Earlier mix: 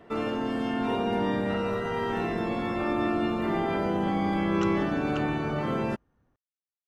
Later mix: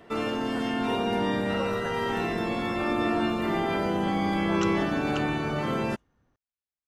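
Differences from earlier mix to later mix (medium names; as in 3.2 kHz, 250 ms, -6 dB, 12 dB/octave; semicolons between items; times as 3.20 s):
speech: unmuted; master: add treble shelf 2.7 kHz +8.5 dB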